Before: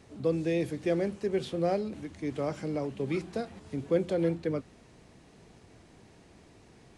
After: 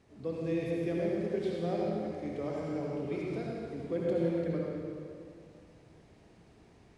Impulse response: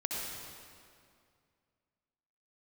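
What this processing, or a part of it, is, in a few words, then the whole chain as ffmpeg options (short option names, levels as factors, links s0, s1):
swimming-pool hall: -filter_complex "[1:a]atrim=start_sample=2205[s0];[0:a][s0]afir=irnorm=-1:irlink=0,highshelf=f=5000:g=-6,volume=0.422"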